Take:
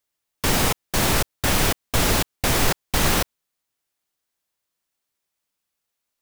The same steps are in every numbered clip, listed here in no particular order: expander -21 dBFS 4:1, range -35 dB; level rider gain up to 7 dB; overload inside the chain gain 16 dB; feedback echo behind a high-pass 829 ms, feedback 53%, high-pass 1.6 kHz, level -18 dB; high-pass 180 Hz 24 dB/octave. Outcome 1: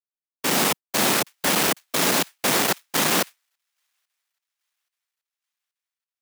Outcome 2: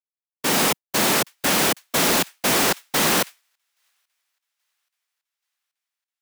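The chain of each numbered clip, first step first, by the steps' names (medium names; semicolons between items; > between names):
level rider > overload inside the chain > feedback echo behind a high-pass > expander > high-pass; high-pass > level rider > feedback echo behind a high-pass > overload inside the chain > expander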